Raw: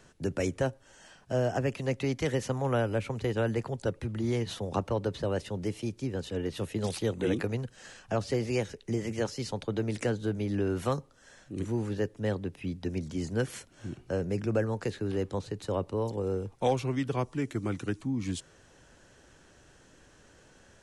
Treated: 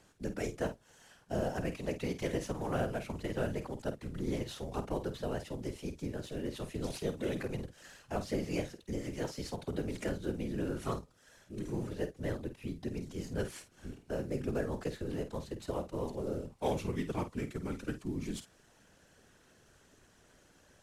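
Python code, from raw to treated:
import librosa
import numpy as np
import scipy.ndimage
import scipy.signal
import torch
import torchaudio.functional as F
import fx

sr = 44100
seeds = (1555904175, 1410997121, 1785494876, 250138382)

y = fx.cvsd(x, sr, bps=64000)
y = fx.whisperise(y, sr, seeds[0])
y = fx.doubler(y, sr, ms=50.0, db=-10.5)
y = y * 10.0 ** (-6.0 / 20.0)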